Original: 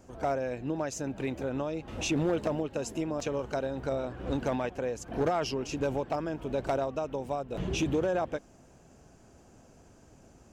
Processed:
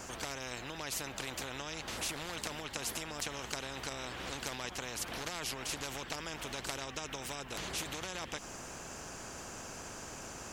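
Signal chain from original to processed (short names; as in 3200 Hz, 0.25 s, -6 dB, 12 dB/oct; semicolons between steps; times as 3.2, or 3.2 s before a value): compressor 2.5:1, threshold -33 dBFS, peak gain reduction 6.5 dB; spectral compressor 4:1; gain +5.5 dB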